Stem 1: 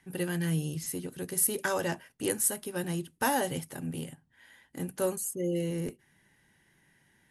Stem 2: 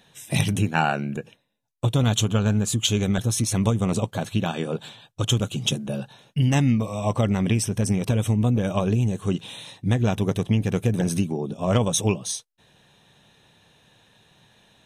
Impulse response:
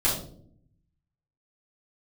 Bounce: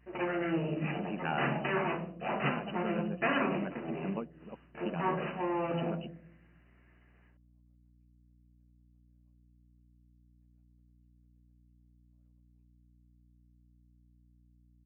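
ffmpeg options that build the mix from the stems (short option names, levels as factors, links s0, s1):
-filter_complex "[0:a]aeval=exprs='abs(val(0))':c=same,volume=0.794,asplit=3[s0][s1][s2];[s1]volume=0.355[s3];[1:a]adelay=500,volume=0.224[s4];[s2]apad=whole_len=677249[s5];[s4][s5]sidechaingate=range=0.00141:threshold=0.00141:ratio=16:detection=peak[s6];[2:a]atrim=start_sample=2205[s7];[s3][s7]afir=irnorm=-1:irlink=0[s8];[s0][s6][s8]amix=inputs=3:normalize=0,afftfilt=real='re*between(b*sr/4096,130,3000)':imag='im*between(b*sr/4096,130,3000)':win_size=4096:overlap=0.75,aeval=exprs='val(0)+0.000794*(sin(2*PI*60*n/s)+sin(2*PI*2*60*n/s)/2+sin(2*PI*3*60*n/s)/3+sin(2*PI*4*60*n/s)/4+sin(2*PI*5*60*n/s)/5)':c=same"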